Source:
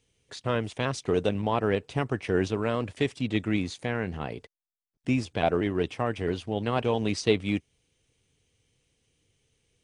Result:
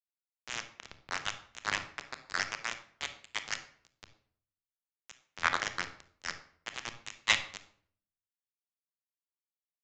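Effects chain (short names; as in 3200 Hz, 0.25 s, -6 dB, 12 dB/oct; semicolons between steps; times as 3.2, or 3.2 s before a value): tracing distortion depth 0.035 ms; spectral gate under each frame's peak -20 dB weak; HPF 820 Hz 12 dB/oct; bell 1500 Hz +14 dB 1.2 oct; comb 1 ms, depth 34%; bit-crush 4-bit; on a send at -7.5 dB: reverb RT60 0.95 s, pre-delay 28 ms; on the sum: downsampling 16000 Hz; three-band expander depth 100%; gain -3.5 dB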